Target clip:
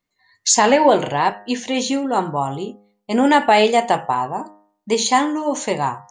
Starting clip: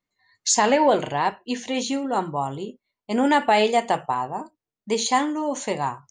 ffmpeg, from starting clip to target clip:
-af "bandreject=f=102.4:t=h:w=4,bandreject=f=204.8:t=h:w=4,bandreject=f=307.2:t=h:w=4,bandreject=f=409.6:t=h:w=4,bandreject=f=512:t=h:w=4,bandreject=f=614.4:t=h:w=4,bandreject=f=716.8:t=h:w=4,bandreject=f=819.2:t=h:w=4,bandreject=f=921.6:t=h:w=4,bandreject=f=1.024k:t=h:w=4,bandreject=f=1.1264k:t=h:w=4,bandreject=f=1.2288k:t=h:w=4,bandreject=f=1.3312k:t=h:w=4,bandreject=f=1.4336k:t=h:w=4,bandreject=f=1.536k:t=h:w=4,bandreject=f=1.6384k:t=h:w=4,bandreject=f=1.7408k:t=h:w=4,bandreject=f=1.8432k:t=h:w=4,bandreject=f=1.9456k:t=h:w=4,volume=5dB"

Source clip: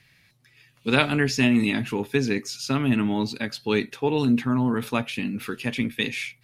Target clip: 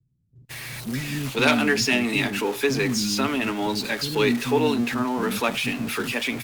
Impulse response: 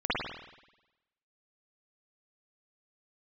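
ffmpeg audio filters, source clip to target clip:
-filter_complex "[0:a]aeval=exprs='val(0)+0.5*0.0251*sgn(val(0))':c=same,acrossover=split=230|3000[a][b][c];[a]acompressor=threshold=-41dB:ratio=2[d];[d][b][c]amix=inputs=3:normalize=0,asoftclip=type=tanh:threshold=-10.5dB,acrossover=split=250[e][f];[f]adelay=490[g];[e][g]amix=inputs=2:normalize=0,agate=range=-27dB:threshold=-40dB:ratio=16:detection=peak,volume=3.5dB" -ar 48000 -c:a libopus -b:a 48k

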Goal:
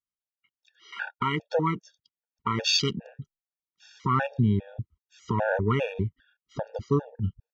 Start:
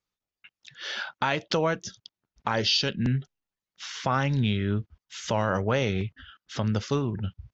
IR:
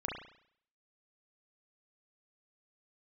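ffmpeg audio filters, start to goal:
-af "afwtdn=0.0251,afftfilt=real='re*gt(sin(2*PI*2.5*pts/sr)*(1-2*mod(floor(b*sr/1024/470),2)),0)':imag='im*gt(sin(2*PI*2.5*pts/sr)*(1-2*mod(floor(b*sr/1024/470),2)),0)':win_size=1024:overlap=0.75,volume=3.5dB"

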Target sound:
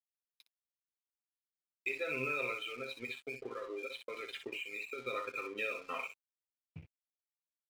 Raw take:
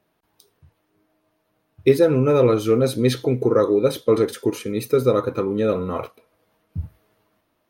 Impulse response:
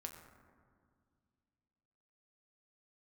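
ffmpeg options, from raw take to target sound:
-filter_complex "[0:a]bandpass=f=2.5k:t=q:w=5.7:csg=0,acompressor=mode=upward:threshold=-23dB:ratio=2.5,asoftclip=type=tanh:threshold=-23.5dB,agate=range=-33dB:threshold=-36dB:ratio=3:detection=peak,alimiter=level_in=9dB:limit=-24dB:level=0:latency=1:release=395,volume=-9dB,aecho=1:1:7.5:0.44,asettb=1/sr,asplit=3[a][b][c];[a]atrim=end=2.514[d];[b]atrim=start=2.51:end=4.99,asetpts=PTS-STARTPTS,afade=t=in:d=0.004:c=qsin,afade=t=out:st=2.476:d=0.004:c=qsin,acompressor=threshold=-42dB:ratio=6[e];[c]atrim=start=4.986[f];[d][e]acrossfade=d=0.004:c1=hsin:c2=qsin[g];[g][f]acrossfade=d=0.004:c1=qsin:c2=hsin,afftdn=nr=20:nf=-49,aecho=1:1:25|62:0.251|0.447,aeval=exprs='sgn(val(0))*max(abs(val(0))-0.00112,0)':c=same,volume=4dB"

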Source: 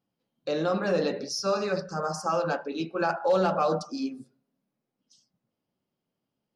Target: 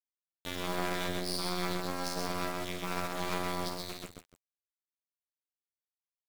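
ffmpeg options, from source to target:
-filter_complex "[0:a]bandreject=f=138.3:t=h:w=4,bandreject=f=276.6:t=h:w=4,bandreject=f=414.9:t=h:w=4,bandreject=f=553.2:t=h:w=4,bandreject=f=691.5:t=h:w=4,bandreject=f=829.8:t=h:w=4,bandreject=f=968.1:t=h:w=4,bandreject=f=1.1064k:t=h:w=4,bandreject=f=1.2447k:t=h:w=4,bandreject=f=1.383k:t=h:w=4,bandreject=f=1.5213k:t=h:w=4,bandreject=f=1.6596k:t=h:w=4,bandreject=f=1.7979k:t=h:w=4,bandreject=f=1.9362k:t=h:w=4,bandreject=f=2.0745k:t=h:w=4,bandreject=f=2.2128k:t=h:w=4,bandreject=f=2.3511k:t=h:w=4,bandreject=f=2.4894k:t=h:w=4,bandreject=f=2.6277k:t=h:w=4,bandreject=f=2.766k:t=h:w=4,bandreject=f=2.9043k:t=h:w=4,bandreject=f=3.0426k:t=h:w=4,bandreject=f=3.1809k:t=h:w=4,bandreject=f=3.3192k:t=h:w=4,bandreject=f=3.4575k:t=h:w=4,bandreject=f=3.5958k:t=h:w=4,afftfilt=real='re*lt(hypot(re,im),0.158)':imag='im*lt(hypot(re,im),0.158)':win_size=1024:overlap=0.75,lowshelf=f=69:g=8.5,acrossover=split=160|2400[a][b][c];[a]acontrast=41[d];[d][b][c]amix=inputs=3:normalize=0,asetrate=37084,aresample=44100,atempo=1.18921,afftfilt=real='hypot(re,im)*cos(PI*b)':imag='0':win_size=2048:overlap=0.75,acrusher=bits=4:dc=4:mix=0:aa=0.000001,aecho=1:1:46|55|133|300:0.141|0.316|0.668|0.141,asetrate=45938,aresample=44100,volume=3.5dB"

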